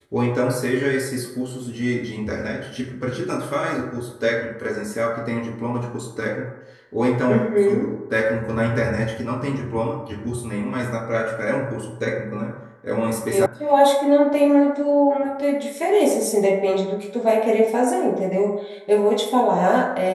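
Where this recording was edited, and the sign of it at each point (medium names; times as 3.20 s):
13.46 s: sound stops dead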